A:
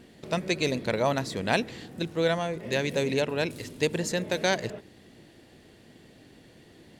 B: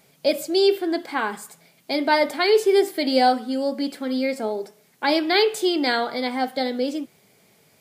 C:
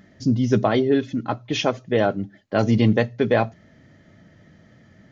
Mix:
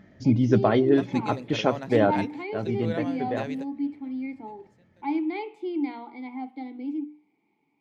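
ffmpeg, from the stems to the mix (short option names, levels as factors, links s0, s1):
-filter_complex "[0:a]highpass=130,adelay=650,volume=0.422[s0];[1:a]asplit=3[s1][s2][s3];[s1]bandpass=f=300:t=q:w=8,volume=1[s4];[s2]bandpass=f=870:t=q:w=8,volume=0.501[s5];[s3]bandpass=f=2240:t=q:w=8,volume=0.355[s6];[s4][s5][s6]amix=inputs=3:normalize=0,bandreject=f=60:t=h:w=6,bandreject=f=120:t=h:w=6,bandreject=f=180:t=h:w=6,bandreject=f=240:t=h:w=6,bandreject=f=300:t=h:w=6,volume=1.12[s7];[2:a]volume=0.891,afade=t=out:st=2.14:d=0.26:silence=0.298538,asplit=2[s8][s9];[s9]apad=whole_len=337351[s10];[s0][s10]sidechaingate=range=0.0355:threshold=0.00282:ratio=16:detection=peak[s11];[s11][s7][s8]amix=inputs=3:normalize=0,highshelf=f=3400:g=-10.5"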